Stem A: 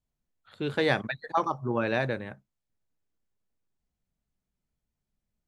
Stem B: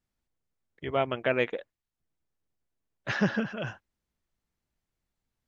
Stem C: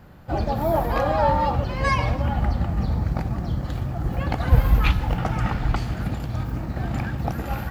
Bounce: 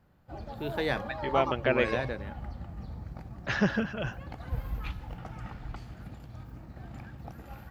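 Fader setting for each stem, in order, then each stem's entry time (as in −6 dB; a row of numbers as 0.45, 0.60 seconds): −5.0, 0.0, −17.5 decibels; 0.00, 0.40, 0.00 seconds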